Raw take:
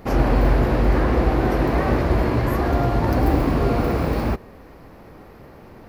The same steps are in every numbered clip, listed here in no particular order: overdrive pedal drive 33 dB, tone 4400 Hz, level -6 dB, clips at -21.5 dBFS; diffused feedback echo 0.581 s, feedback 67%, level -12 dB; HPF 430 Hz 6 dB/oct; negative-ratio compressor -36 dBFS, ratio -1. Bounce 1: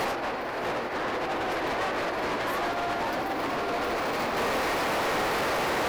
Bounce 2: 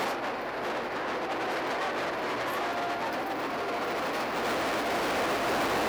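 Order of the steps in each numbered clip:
negative-ratio compressor > HPF > overdrive pedal > diffused feedback echo; diffused feedback echo > negative-ratio compressor > overdrive pedal > HPF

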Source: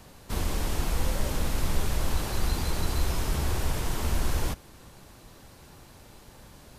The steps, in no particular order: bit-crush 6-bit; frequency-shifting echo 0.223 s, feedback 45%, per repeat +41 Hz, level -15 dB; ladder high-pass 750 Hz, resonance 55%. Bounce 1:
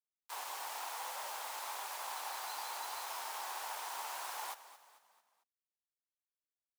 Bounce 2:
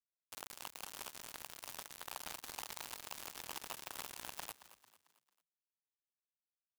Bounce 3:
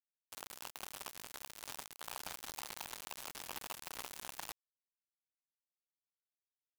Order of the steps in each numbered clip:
bit-crush > frequency-shifting echo > ladder high-pass; ladder high-pass > bit-crush > frequency-shifting echo; frequency-shifting echo > ladder high-pass > bit-crush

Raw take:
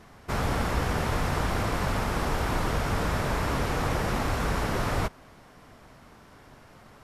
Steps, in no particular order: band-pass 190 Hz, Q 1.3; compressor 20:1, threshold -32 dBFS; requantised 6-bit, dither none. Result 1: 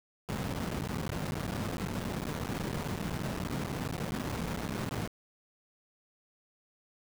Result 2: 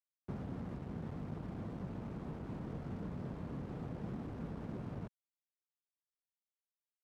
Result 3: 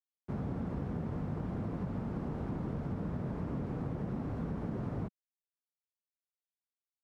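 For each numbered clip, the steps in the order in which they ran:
band-pass > compressor > requantised; compressor > requantised > band-pass; requantised > band-pass > compressor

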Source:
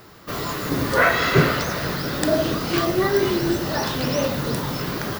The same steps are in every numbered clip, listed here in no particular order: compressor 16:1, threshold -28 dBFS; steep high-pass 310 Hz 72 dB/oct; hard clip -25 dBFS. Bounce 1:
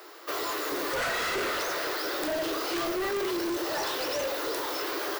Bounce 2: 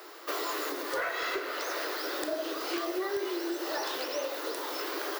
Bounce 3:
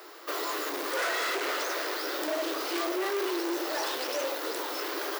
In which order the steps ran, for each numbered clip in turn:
steep high-pass > hard clip > compressor; compressor > steep high-pass > hard clip; hard clip > compressor > steep high-pass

